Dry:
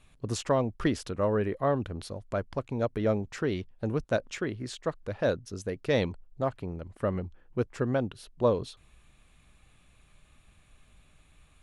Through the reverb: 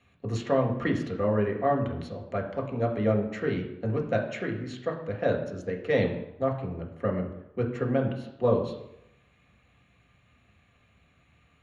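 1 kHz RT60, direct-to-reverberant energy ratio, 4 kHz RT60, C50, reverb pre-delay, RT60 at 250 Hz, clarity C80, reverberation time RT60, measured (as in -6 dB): 0.85 s, 0.0 dB, 0.65 s, 8.0 dB, 3 ms, 0.75 s, 10.5 dB, 0.85 s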